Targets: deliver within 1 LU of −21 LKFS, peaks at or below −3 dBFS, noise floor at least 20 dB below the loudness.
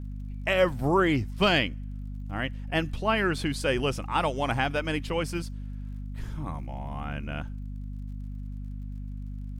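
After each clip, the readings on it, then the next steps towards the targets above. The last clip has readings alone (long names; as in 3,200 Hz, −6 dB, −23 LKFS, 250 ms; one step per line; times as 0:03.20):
crackle rate 45 per second; mains hum 50 Hz; hum harmonics up to 250 Hz; level of the hum −33 dBFS; integrated loudness −28.0 LKFS; sample peak −9.5 dBFS; target loudness −21.0 LKFS
→ click removal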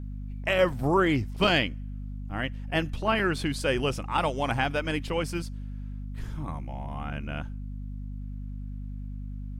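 crackle rate 0.21 per second; mains hum 50 Hz; hum harmonics up to 250 Hz; level of the hum −33 dBFS
→ mains-hum notches 50/100/150/200/250 Hz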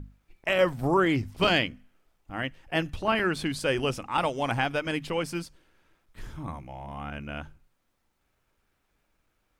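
mains hum none found; integrated loudness −28.0 LKFS; sample peak −11.0 dBFS; target loudness −21.0 LKFS
→ level +7 dB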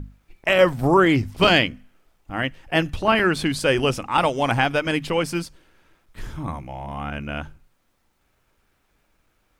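integrated loudness −21.0 LKFS; sample peak −4.0 dBFS; background noise floor −68 dBFS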